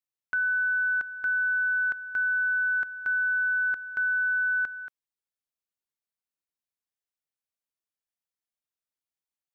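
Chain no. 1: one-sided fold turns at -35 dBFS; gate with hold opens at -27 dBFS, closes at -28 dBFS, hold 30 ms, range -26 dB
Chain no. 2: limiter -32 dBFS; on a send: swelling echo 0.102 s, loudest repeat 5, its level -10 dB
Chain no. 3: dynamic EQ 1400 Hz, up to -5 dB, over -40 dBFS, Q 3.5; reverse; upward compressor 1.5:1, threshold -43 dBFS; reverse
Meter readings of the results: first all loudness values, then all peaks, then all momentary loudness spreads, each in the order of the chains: -30.5, -22.5, -29.5 LUFS; -22.5, -18.5, -22.5 dBFS; 3, 15, 4 LU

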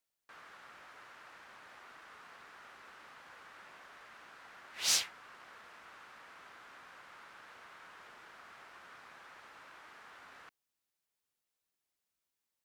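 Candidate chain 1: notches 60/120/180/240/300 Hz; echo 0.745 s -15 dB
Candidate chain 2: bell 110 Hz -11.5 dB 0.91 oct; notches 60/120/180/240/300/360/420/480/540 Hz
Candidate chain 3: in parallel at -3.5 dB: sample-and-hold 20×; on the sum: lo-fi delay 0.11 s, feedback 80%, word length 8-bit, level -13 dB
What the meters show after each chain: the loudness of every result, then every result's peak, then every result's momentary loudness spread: -35.0, -32.0, -33.5 LUFS; -14.5, -14.5, -12.5 dBFS; 10, 18, 15 LU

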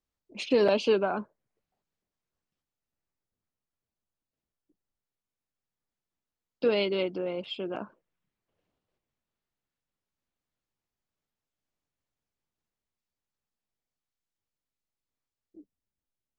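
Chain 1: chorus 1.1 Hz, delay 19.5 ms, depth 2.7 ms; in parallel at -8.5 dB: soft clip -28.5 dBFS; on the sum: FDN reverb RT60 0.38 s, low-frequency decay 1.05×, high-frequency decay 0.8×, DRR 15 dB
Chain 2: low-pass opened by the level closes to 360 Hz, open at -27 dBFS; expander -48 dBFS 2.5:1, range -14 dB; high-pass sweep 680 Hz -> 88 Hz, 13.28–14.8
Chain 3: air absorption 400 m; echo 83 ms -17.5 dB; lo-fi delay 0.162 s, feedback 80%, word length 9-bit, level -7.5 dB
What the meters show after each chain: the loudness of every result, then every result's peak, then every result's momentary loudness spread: -30.0, -28.0, -29.0 LUFS; -14.5, -9.0, -11.5 dBFS; 15, 13, 21 LU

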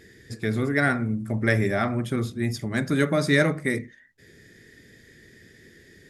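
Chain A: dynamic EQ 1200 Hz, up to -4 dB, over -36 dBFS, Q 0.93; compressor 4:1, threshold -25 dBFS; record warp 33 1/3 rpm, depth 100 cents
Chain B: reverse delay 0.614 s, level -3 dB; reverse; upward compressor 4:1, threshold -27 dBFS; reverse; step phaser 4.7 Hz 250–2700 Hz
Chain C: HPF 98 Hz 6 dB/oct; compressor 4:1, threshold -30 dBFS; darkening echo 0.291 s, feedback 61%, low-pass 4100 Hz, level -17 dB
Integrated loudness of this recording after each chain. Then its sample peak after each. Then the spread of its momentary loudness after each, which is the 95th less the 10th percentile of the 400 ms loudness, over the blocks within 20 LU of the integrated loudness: -30.0, -27.5, -33.5 LUFS; -13.0, -10.0, -16.0 dBFS; 5, 15, 19 LU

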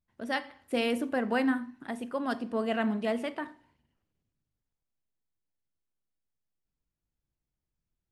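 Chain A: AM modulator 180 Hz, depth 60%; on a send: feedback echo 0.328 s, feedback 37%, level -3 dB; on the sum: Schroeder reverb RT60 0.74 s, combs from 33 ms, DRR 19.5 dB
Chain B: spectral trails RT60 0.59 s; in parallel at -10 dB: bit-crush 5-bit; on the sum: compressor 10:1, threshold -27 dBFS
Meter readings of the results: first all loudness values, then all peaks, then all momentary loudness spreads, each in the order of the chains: -33.0, -32.5 LUFS; -16.5, -19.0 dBFS; 13, 5 LU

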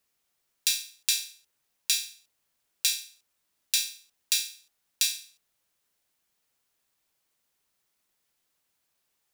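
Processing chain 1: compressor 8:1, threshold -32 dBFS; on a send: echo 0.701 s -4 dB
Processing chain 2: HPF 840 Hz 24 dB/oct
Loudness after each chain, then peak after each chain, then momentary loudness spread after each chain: -38.0, -28.0 LUFS; -7.5, -4.5 dBFS; 14, 10 LU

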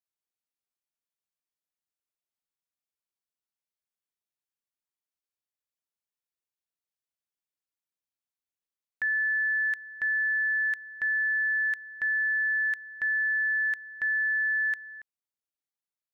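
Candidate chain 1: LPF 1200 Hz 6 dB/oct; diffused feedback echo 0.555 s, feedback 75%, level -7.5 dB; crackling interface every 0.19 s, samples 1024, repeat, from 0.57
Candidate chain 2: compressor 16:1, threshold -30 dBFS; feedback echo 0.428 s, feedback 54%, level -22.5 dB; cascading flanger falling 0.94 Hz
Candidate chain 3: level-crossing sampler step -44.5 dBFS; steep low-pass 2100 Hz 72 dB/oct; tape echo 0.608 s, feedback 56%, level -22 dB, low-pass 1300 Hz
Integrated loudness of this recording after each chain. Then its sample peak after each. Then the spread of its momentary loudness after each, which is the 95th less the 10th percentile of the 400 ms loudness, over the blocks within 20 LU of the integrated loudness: -31.5, -36.0, -26.5 LUFS; -25.5, -25.0, -23.0 dBFS; 9, 8, 5 LU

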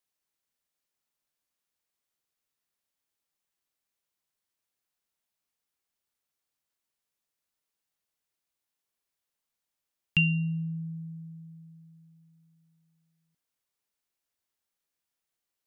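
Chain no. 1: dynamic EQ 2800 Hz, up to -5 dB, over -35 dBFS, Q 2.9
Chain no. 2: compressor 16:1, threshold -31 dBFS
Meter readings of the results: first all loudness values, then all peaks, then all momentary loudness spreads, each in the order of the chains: -31.5, -37.5 LUFS; -13.0, -16.5 dBFS; 21, 18 LU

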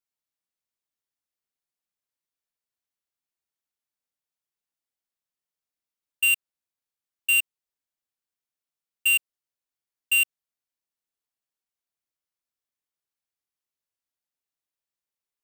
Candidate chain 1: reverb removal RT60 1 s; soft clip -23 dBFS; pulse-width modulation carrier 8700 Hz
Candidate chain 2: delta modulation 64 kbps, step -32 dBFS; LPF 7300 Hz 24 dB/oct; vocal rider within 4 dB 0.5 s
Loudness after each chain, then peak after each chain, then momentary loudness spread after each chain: -37.5, -34.0 LUFS; -22.5, -20.0 dBFS; 17, 9 LU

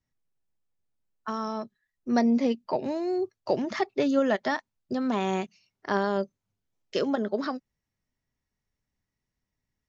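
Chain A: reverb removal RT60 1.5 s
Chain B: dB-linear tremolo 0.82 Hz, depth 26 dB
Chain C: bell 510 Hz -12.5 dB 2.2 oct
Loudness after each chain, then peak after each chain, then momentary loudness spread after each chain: -30.0, -32.0, -36.0 LUFS; -12.0, -14.0, -18.5 dBFS; 15, 19, 14 LU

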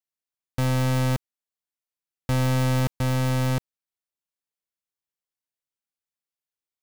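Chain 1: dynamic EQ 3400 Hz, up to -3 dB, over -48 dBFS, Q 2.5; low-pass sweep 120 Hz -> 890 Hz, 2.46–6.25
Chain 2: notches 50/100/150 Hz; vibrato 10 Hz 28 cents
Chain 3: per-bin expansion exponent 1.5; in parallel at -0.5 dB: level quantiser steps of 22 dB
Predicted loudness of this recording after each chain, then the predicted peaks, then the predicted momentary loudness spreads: -20.0, -25.0, -22.0 LUFS; -12.0, -18.0, -15.5 dBFS; 10, 8, 14 LU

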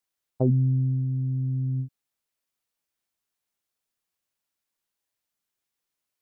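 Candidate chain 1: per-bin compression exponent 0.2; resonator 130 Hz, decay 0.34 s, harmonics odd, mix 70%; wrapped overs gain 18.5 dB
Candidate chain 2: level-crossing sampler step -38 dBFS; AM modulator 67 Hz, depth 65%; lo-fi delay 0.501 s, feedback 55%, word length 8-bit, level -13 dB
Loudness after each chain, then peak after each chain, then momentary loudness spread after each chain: -23.5, -30.5 LUFS; -18.5, -13.0 dBFS; 21, 20 LU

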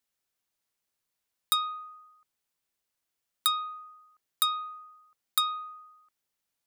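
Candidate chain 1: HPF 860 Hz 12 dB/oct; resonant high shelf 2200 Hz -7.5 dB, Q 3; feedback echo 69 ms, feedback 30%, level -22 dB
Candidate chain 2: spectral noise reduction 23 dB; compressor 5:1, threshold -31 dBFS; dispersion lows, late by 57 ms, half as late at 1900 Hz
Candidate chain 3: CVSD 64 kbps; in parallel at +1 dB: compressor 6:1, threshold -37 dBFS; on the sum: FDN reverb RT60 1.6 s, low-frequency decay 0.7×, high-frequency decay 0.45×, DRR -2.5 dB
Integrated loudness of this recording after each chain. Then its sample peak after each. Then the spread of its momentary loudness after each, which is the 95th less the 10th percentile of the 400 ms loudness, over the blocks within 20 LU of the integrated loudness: -32.0, -37.5, -24.5 LUFS; -15.0, -16.0, -12.5 dBFS; 17, 17, 16 LU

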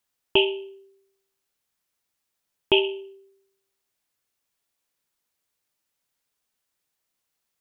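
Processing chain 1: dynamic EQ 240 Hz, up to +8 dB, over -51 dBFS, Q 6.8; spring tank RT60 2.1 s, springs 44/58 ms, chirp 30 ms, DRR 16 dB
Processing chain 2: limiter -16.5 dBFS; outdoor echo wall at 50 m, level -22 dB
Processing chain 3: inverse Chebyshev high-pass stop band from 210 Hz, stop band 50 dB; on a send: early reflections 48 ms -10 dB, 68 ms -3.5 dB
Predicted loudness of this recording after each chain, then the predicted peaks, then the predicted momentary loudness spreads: -24.0, -30.0, -23.5 LUFS; -5.5, -16.5, -7.5 dBFS; 19, 15, 15 LU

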